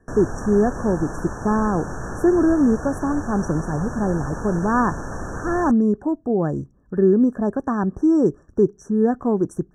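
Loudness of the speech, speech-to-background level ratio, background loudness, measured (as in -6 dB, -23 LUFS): -21.0 LUFS, 11.0 dB, -32.0 LUFS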